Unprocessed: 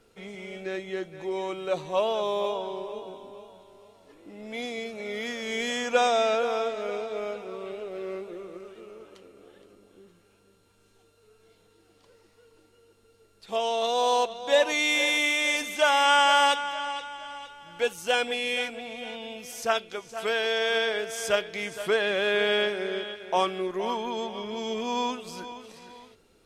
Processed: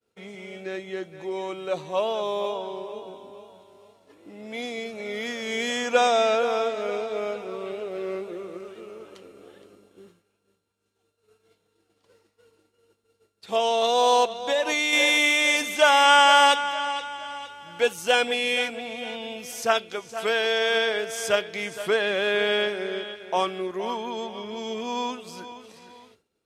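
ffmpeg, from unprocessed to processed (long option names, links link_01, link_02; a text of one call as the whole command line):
ffmpeg -i in.wav -filter_complex "[0:a]asettb=1/sr,asplit=3[link_01][link_02][link_03];[link_01]atrim=end=14.404[link_04];[link_02]atrim=start=14.4:end=14.93,asetpts=PTS-STARTPTS,afade=type=in:duration=0.004:curve=qsin,afade=type=out:start_time=0.526:duration=0.004:curve=qsin,acompressor=threshold=-24dB:ratio=6:attack=3.2:release=140:knee=1:detection=peak[link_05];[link_03]atrim=start=14.926[link_06];[link_04][link_05]acrossfade=duration=0.004:curve1=hsin:curve2=qsin[link_07];[link_07][link_06]acrossfade=duration=0.004:curve1=qsin:curve2=hsin,highpass=73,agate=range=-33dB:threshold=-52dB:ratio=3:detection=peak,dynaudnorm=framelen=570:gausssize=21:maxgain=4.5dB" out.wav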